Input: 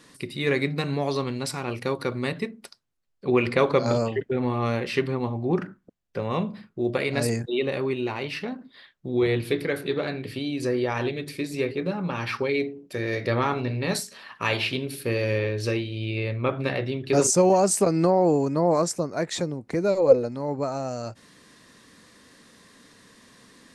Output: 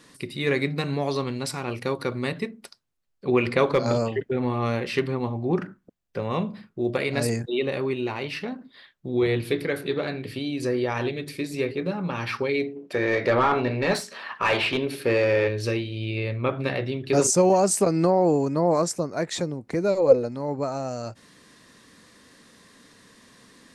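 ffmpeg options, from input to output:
-filter_complex "[0:a]asettb=1/sr,asplit=3[a][b][c];[a]atrim=end=3.724[d];[b]atrim=start=3.72:end=7.21,asetpts=PTS-STARTPTS,afade=t=in:d=0.004:c=qsin,afade=t=out:st=3.486:d=0.004:c=qsin,volume=12.5dB,asoftclip=hard,volume=-12.5dB[e];[c]atrim=start=7.206[f];[d][e]acrossfade=d=0.004:c1=hsin:c2=qsin[g];[g][f]acrossfade=d=0.004:c1=qsin:c2=hsin,asplit=3[h][i][j];[h]afade=t=out:st=12.75:d=0.02[k];[i]asplit=2[l][m];[m]highpass=f=720:p=1,volume=18dB,asoftclip=type=tanh:threshold=-8.5dB[n];[l][n]amix=inputs=2:normalize=0,lowpass=f=1.3k:p=1,volume=-6dB,afade=t=in:st=12.75:d=0.02,afade=t=out:st=15.47:d=0.02[o];[j]afade=t=in:st=15.47:d=0.02[p];[k][o][p]amix=inputs=3:normalize=0"

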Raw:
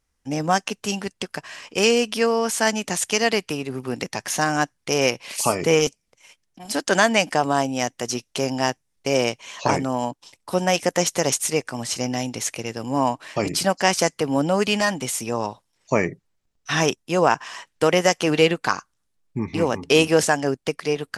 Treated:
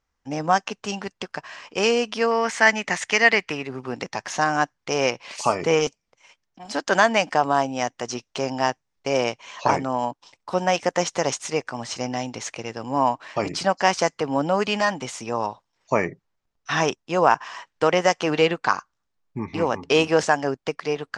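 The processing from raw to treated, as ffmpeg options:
-filter_complex "[0:a]asettb=1/sr,asplit=3[a][b][c];[a]atrim=end=2.314[d];[b]atrim=start=2.31:end=3.67,asetpts=PTS-STARTPTS,afade=t=in:d=0.004:c=qsin,afade=t=out:st=1.356:d=0.004:c=qsin,equalizer=f=2k:t=o:w=0.58:g=12.5[e];[c]atrim=start=3.666[f];[d][e]acrossfade=d=0.004:c1=hsin:c2=qsin[g];[g][f]acrossfade=d=0.004:c1=qsin:c2=hsin,lowpass=f=6.9k:w=0.5412,lowpass=f=6.9k:w=1.3066,equalizer=f=1k:w=0.76:g=7,volume=-4.5dB"

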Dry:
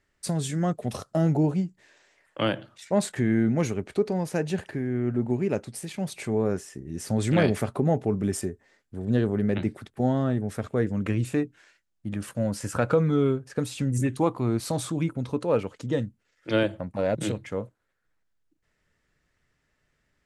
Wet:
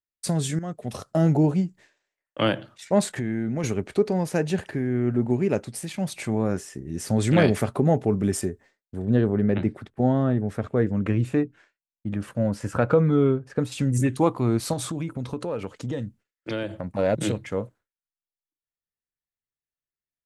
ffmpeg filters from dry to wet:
-filter_complex "[0:a]asettb=1/sr,asplit=3[a][b][c];[a]atrim=end=3.034[d];[b]atrim=start=3.03:end=3.64,asetpts=PTS-STARTPTS,afade=t=in:d=0.004:c=qsin,afade=t=out:st=0.606:d=0.004:c=qsin,acompressor=threshold=-29dB:ratio=2.5:attack=3.2:release=140:knee=1:detection=peak[e];[c]atrim=start=3.636[f];[d][e]acrossfade=d=0.004:c1=hsin:c2=qsin[g];[g][f]acrossfade=d=0.004:c1=qsin:c2=hsin,asettb=1/sr,asplit=3[h][i][j];[h]atrim=end=5.814[k];[i]atrim=start=5.81:end=6.57,asetpts=PTS-STARTPTS,afade=t=in:d=0.004:c=qsin,afade=t=out:st=0.756:d=0.004:c=qsin,equalizer=f=420:t=o:w=0.2:g=-9.5[l];[j]atrim=start=6.566[m];[k][l]acrossfade=d=0.004:c1=hsin:c2=qsin[n];[n][m]acrossfade=d=0.004:c1=qsin:c2=hsin,asettb=1/sr,asplit=3[o][p][q];[o]atrim=end=9.024[r];[p]atrim=start=9.02:end=13.72,asetpts=PTS-STARTPTS,afade=t=in:d=0.004:c=qsin,afade=t=out:st=4.696:d=0.004:c=qsin,highshelf=f=3.6k:g=-12[s];[q]atrim=start=13.716[t];[r][s]acrossfade=d=0.004:c1=hsin:c2=qsin[u];[u][t]acrossfade=d=0.004:c1=qsin:c2=hsin,asettb=1/sr,asplit=3[v][w][x];[v]atrim=end=14.734[y];[w]atrim=start=14.73:end=16.97,asetpts=PTS-STARTPTS,afade=t=in:d=0.004:c=qsin,afade=t=out:st=2.236:d=0.004:c=qsin,acompressor=threshold=-28dB:ratio=6:attack=3.2:release=140:knee=1:detection=peak[z];[x]atrim=start=16.966[aa];[y][z]acrossfade=d=0.004:c1=hsin:c2=qsin[ab];[ab][aa]acrossfade=d=0.004:c1=qsin:c2=hsin,asplit=2[ac][ad];[ac]atrim=end=0.59,asetpts=PTS-STARTPTS,afade=t=out:st=0.586:d=0.004:c=hsin:silence=0.211349[ae];[ad]atrim=start=0.59,asetpts=PTS-STARTPTS,afade=t=in:d=0.64:silence=0.211349[af];[ae][af]concat=n=2:v=0:a=1,agate=range=-33dB:threshold=-47dB:ratio=3:detection=peak,volume=3dB"

